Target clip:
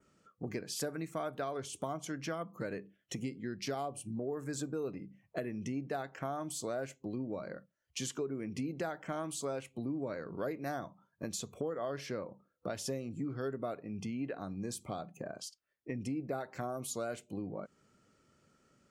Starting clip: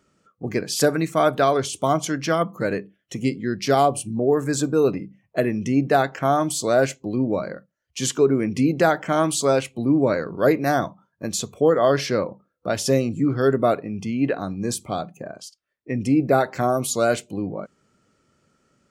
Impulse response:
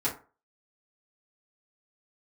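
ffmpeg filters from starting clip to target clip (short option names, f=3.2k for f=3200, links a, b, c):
-af "acompressor=threshold=-33dB:ratio=4,adynamicequalizer=threshold=0.002:dfrequency=4400:dqfactor=1.3:tfrequency=4400:tqfactor=1.3:attack=5:release=100:ratio=0.375:range=3:mode=cutabove:tftype=bell,volume=-4.5dB"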